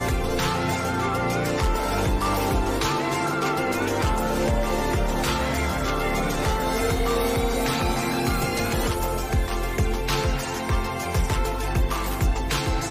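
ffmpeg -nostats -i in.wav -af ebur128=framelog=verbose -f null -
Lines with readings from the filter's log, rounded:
Integrated loudness:
  I:         -24.4 LUFS
  Threshold: -34.4 LUFS
Loudness range:
  LRA:         1.5 LU
  Threshold: -44.4 LUFS
  LRA low:   -25.4 LUFS
  LRA high:  -23.9 LUFS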